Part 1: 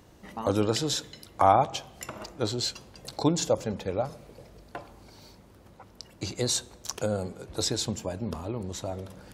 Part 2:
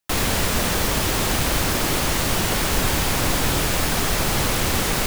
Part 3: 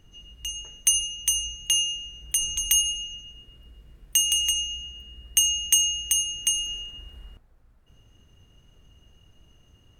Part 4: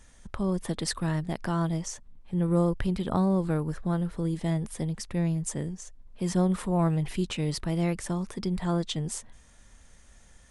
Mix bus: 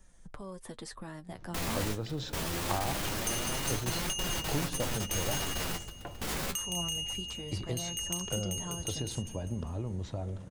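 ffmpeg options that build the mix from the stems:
ffmpeg -i stem1.wav -i stem2.wav -i stem3.wav -i stem4.wav -filter_complex "[0:a]lowpass=3900,adelay=1300,volume=-6dB[link_01];[1:a]adelay=1450,volume=-4dB[link_02];[2:a]adelay=2400,volume=-13dB,asplit=2[link_03][link_04];[link_04]volume=-7dB[link_05];[3:a]acrossover=split=340|870|3700[link_06][link_07][link_08][link_09];[link_06]acompressor=threshold=-41dB:ratio=4[link_10];[link_07]acompressor=threshold=-44dB:ratio=4[link_11];[link_08]acompressor=threshold=-40dB:ratio=4[link_12];[link_09]acompressor=threshold=-41dB:ratio=4[link_13];[link_10][link_11][link_12][link_13]amix=inputs=4:normalize=0,equalizer=frequency=2900:width=0.48:gain=-6.5,volume=0dB,asplit=2[link_14][link_15];[link_15]apad=whole_len=287170[link_16];[link_02][link_16]sidechaingate=range=-30dB:threshold=-42dB:ratio=16:detection=peak[link_17];[link_01][link_03]amix=inputs=2:normalize=0,equalizer=frequency=90:width=0.52:gain=10.5,acompressor=threshold=-31dB:ratio=6,volume=0dB[link_18];[link_17][link_14]amix=inputs=2:normalize=0,flanger=delay=5.2:depth=8.5:regen=35:speed=0.24:shape=triangular,alimiter=level_in=1dB:limit=-24dB:level=0:latency=1:release=33,volume=-1dB,volume=0dB[link_19];[link_05]aecho=0:1:200|400|600|800|1000|1200|1400:1|0.48|0.23|0.111|0.0531|0.0255|0.0122[link_20];[link_18][link_19][link_20]amix=inputs=3:normalize=0" out.wav

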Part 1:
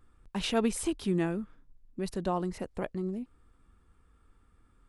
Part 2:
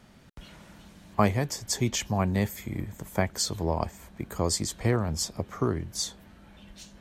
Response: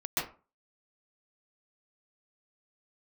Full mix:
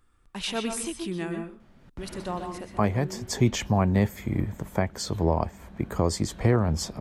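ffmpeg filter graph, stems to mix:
-filter_complex "[0:a]tiltshelf=frequency=1200:gain=-4,volume=-2dB,asplit=2[link_01][link_02];[link_02]volume=-10.5dB[link_03];[1:a]highshelf=frequency=3100:gain=-11.5,dynaudnorm=framelen=150:gausssize=5:maxgain=10.5dB,adelay=1600,volume=-2.5dB[link_04];[2:a]atrim=start_sample=2205[link_05];[link_03][link_05]afir=irnorm=-1:irlink=0[link_06];[link_01][link_04][link_06]amix=inputs=3:normalize=0,alimiter=limit=-9.5dB:level=0:latency=1:release=390"

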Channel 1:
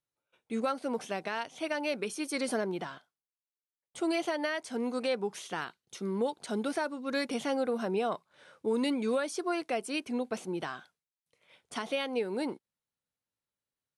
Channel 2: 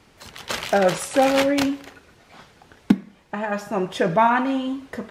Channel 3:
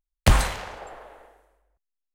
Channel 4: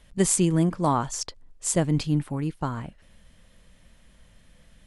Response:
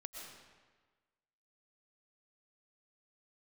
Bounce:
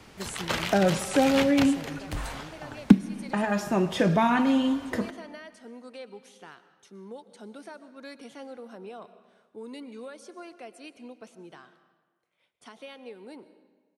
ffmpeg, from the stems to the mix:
-filter_complex "[0:a]adelay=900,volume=-14dB,asplit=2[link_01][link_02];[link_02]volume=-4.5dB[link_03];[1:a]acrossover=split=2900[link_04][link_05];[link_05]acompressor=threshold=-37dB:ratio=4:attack=1:release=60[link_06];[link_04][link_06]amix=inputs=2:normalize=0,volume=2.5dB,asplit=2[link_07][link_08];[link_08]volume=-11dB[link_09];[2:a]alimiter=limit=-14dB:level=0:latency=1:release=37,adelay=1850,volume=-11.5dB[link_10];[3:a]volume=-17.5dB[link_11];[4:a]atrim=start_sample=2205[link_12];[link_03][link_09]amix=inputs=2:normalize=0[link_13];[link_13][link_12]afir=irnorm=-1:irlink=0[link_14];[link_01][link_07][link_10][link_11][link_14]amix=inputs=5:normalize=0,acrossover=split=270|3000[link_15][link_16][link_17];[link_16]acompressor=threshold=-31dB:ratio=2[link_18];[link_15][link_18][link_17]amix=inputs=3:normalize=0"

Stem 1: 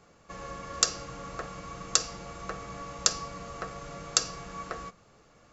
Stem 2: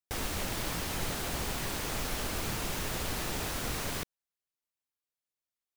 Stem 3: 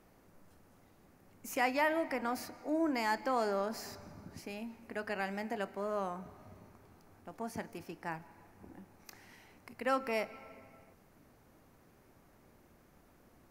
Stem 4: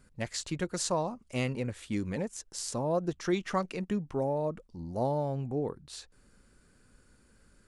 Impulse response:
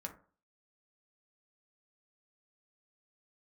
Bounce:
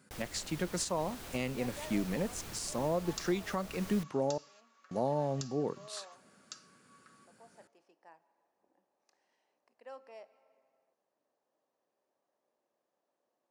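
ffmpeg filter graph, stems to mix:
-filter_complex "[0:a]highpass=frequency=1200:width=0.5412,highpass=frequency=1200:width=1.3066,adelay=2350,volume=-9.5dB,asplit=2[link_01][link_02];[link_02]volume=-11.5dB[link_03];[1:a]volume=-11.5dB[link_04];[2:a]highshelf=frequency=3900:gain=-5.5,volume=-15.5dB[link_05];[3:a]highpass=frequency=140:width=0.5412,highpass=frequency=140:width=1.3066,volume=0dB,asplit=3[link_06][link_07][link_08];[link_06]atrim=end=4.38,asetpts=PTS-STARTPTS,afade=type=out:start_time=4.376:duration=0.004:curve=hsin[link_09];[link_07]atrim=start=4.38:end=4.91,asetpts=PTS-STARTPTS,volume=0[link_10];[link_08]atrim=start=4.91,asetpts=PTS-STARTPTS,afade=type=in:duration=0.004:curve=hsin[link_11];[link_09][link_10][link_11]concat=n=3:v=0:a=1,asplit=3[link_12][link_13][link_14];[link_13]volume=-19dB[link_15];[link_14]apad=whole_len=347479[link_16];[link_01][link_16]sidechaingate=range=-19dB:threshold=-60dB:ratio=16:detection=peak[link_17];[link_17][link_05]amix=inputs=2:normalize=0,highpass=490,equalizer=frequency=570:width_type=q:width=4:gain=6,equalizer=frequency=1400:width_type=q:width=4:gain=-8,equalizer=frequency=2200:width_type=q:width=4:gain=-9,lowpass=frequency=9100:width=0.5412,lowpass=frequency=9100:width=1.3066,alimiter=limit=-19.5dB:level=0:latency=1:release=438,volume=0dB[link_18];[4:a]atrim=start_sample=2205[link_19];[link_03][link_15]amix=inputs=2:normalize=0[link_20];[link_20][link_19]afir=irnorm=-1:irlink=0[link_21];[link_04][link_12][link_18][link_21]amix=inputs=4:normalize=0,alimiter=limit=-21.5dB:level=0:latency=1:release=303"

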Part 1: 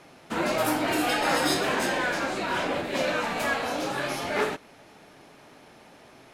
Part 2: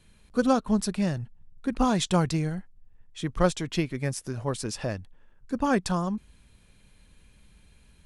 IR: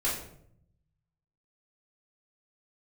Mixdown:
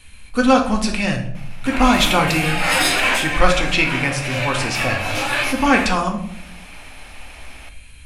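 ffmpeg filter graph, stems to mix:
-filter_complex "[0:a]adelay=1350,volume=2dB,asplit=2[link_01][link_02];[link_02]volume=-15dB[link_03];[1:a]acrossover=split=5900[link_04][link_05];[link_05]acompressor=threshold=-52dB:ratio=4:attack=1:release=60[link_06];[link_04][link_06]amix=inputs=2:normalize=0,volume=2.5dB,asplit=3[link_07][link_08][link_09];[link_08]volume=-7dB[link_10];[link_09]apad=whole_len=339120[link_11];[link_01][link_11]sidechaincompress=threshold=-47dB:ratio=8:attack=35:release=125[link_12];[2:a]atrim=start_sample=2205[link_13];[link_03][link_10]amix=inputs=2:normalize=0[link_14];[link_14][link_13]afir=irnorm=-1:irlink=0[link_15];[link_12][link_07][link_15]amix=inputs=3:normalize=0,equalizer=frequency=160:width_type=o:width=0.67:gain=-8,equalizer=frequency=400:width_type=o:width=0.67:gain=-11,equalizer=frequency=2500:width_type=o:width=0.67:gain=10,equalizer=frequency=10000:width_type=o:width=0.67:gain=6,acontrast=25"

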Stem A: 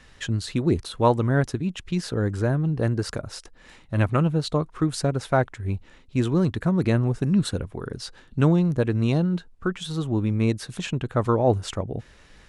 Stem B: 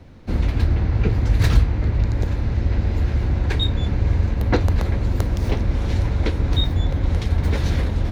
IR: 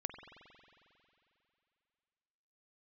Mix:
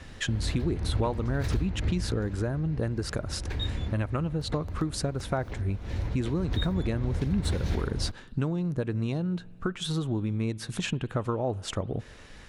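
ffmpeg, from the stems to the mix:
-filter_complex "[0:a]acompressor=threshold=-29dB:ratio=6,volume=1.5dB,asplit=3[link_01][link_02][link_03];[link_02]volume=-14dB[link_04];[1:a]volume=6dB,afade=type=out:start_time=1.96:duration=0.68:silence=0.446684,afade=type=in:start_time=6.13:duration=0.43:silence=0.334965[link_05];[link_03]apad=whole_len=362336[link_06];[link_05][link_06]sidechaincompress=threshold=-38dB:ratio=8:attack=5.6:release=268[link_07];[2:a]atrim=start_sample=2205[link_08];[link_04][link_08]afir=irnorm=-1:irlink=0[link_09];[link_01][link_07][link_09]amix=inputs=3:normalize=0"

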